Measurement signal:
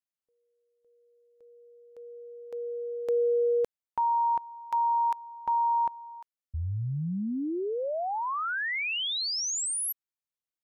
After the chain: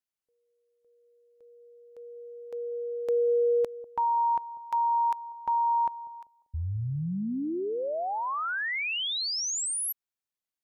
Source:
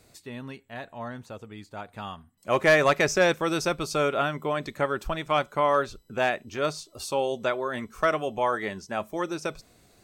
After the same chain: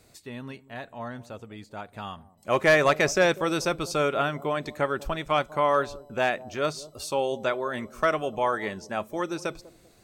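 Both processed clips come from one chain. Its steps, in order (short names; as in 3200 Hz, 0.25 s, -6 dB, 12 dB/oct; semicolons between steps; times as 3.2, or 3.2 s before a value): analogue delay 0.195 s, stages 1024, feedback 31%, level -18 dB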